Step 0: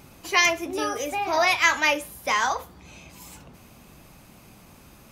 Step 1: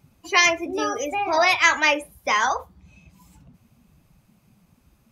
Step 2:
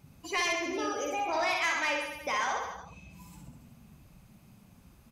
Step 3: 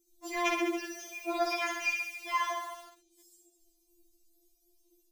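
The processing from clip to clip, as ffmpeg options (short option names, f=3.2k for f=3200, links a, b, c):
-af "afftdn=nr=17:nf=-36,volume=2.5dB"
-filter_complex "[0:a]acompressor=threshold=-47dB:ratio=1.5,asplit=2[a][b];[b]aecho=0:1:60|126|198.6|278.5|366.3:0.631|0.398|0.251|0.158|0.1[c];[a][c]amix=inputs=2:normalize=0,asoftclip=type=tanh:threshold=-21.5dB"
-filter_complex "[0:a]acrossover=split=440|4400[a][b][c];[b]acrusher=bits=7:mix=0:aa=0.000001[d];[a][d][c]amix=inputs=3:normalize=0,afftfilt=real='re*4*eq(mod(b,16),0)':imag='im*4*eq(mod(b,16),0)':win_size=2048:overlap=0.75"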